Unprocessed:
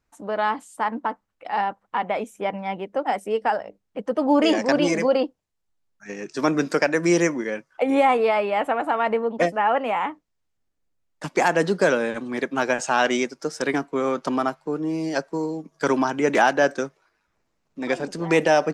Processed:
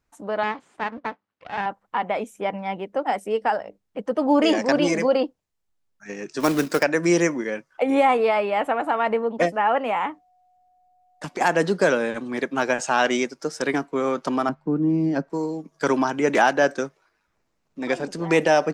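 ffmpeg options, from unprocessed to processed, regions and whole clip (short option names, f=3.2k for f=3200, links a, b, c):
-filter_complex "[0:a]asettb=1/sr,asplit=3[a][b][c];[a]atrim=end=0.434[d];[b]atrim=start=0.43:end=1.66,asetpts=PTS-STARTPTS,afade=t=in:d=0.004:c=qsin,afade=t=out:st=1.226:d=0.004:c=qsin,aeval=exprs='max(val(0),0)':c=same,highpass=140,lowpass=4.1k[e];[c]atrim=start=1.656[f];[d][e]acrossfade=d=0.004:c1=hsin:c2=qsin[g];[g][f]acrossfade=d=0.004:c1=qsin:c2=hsin,asettb=1/sr,asplit=3[h][i][j];[h]atrim=end=6.404[k];[i]atrim=start=6.4:end=6.83,asetpts=PTS-STARTPTS,afade=t=in:d=0.004:c=qsin,afade=t=out:st=0.426:d=0.004:c=qsin,highpass=44,acrusher=bits=3:mode=log:mix=0:aa=0.000001[l];[j]atrim=start=6.826[m];[k][l]acrossfade=d=0.004:c1=hsin:c2=qsin[n];[n][m]acrossfade=d=0.004:c1=qsin:c2=hsin,asettb=1/sr,asplit=3[o][p][q];[o]atrim=end=10.074[r];[p]atrim=start=10.07:end=11.41,asetpts=PTS-STARTPTS,afade=t=in:d=0.004:c=qsin,afade=t=out:st=1.336:d=0.004:c=qsin,acompressor=threshold=-26dB:ratio=6:attack=3.2:release=140:knee=1:detection=peak,aeval=exprs='val(0)+0.00112*sin(2*PI*730*n/s)':c=same[s];[q]atrim=start=11.406[t];[r][s]acrossfade=d=0.004:c1=hsin:c2=qsin[u];[u][t]acrossfade=d=0.004:c1=qsin:c2=hsin,asettb=1/sr,asplit=3[v][w][x];[v]atrim=end=14.494[y];[w]atrim=start=14.49:end=15.3,asetpts=PTS-STARTPTS,afade=t=in:d=0.004:c=qsin,afade=t=out:st=0.806:d=0.004:c=qsin,lowpass=f=1.1k:p=1,lowshelf=f=340:t=q:w=1.5:g=7.5[z];[x]atrim=start=15.296[aa];[y][z]acrossfade=d=0.004:c1=hsin:c2=qsin[ab];[ab][aa]acrossfade=d=0.004:c1=qsin:c2=hsin"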